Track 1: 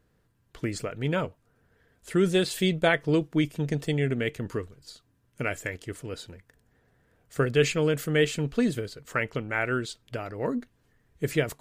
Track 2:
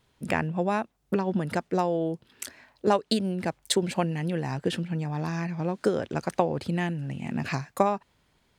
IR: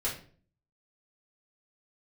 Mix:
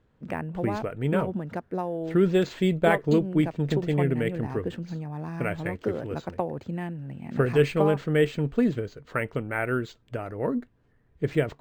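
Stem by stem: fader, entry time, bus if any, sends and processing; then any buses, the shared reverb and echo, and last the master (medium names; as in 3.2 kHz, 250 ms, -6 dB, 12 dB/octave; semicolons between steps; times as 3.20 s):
+2.0 dB, 0.00 s, no send, none
-4.0 dB, 0.00 s, no send, none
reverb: none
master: treble shelf 2.6 kHz -11 dB; decimation joined by straight lines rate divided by 4×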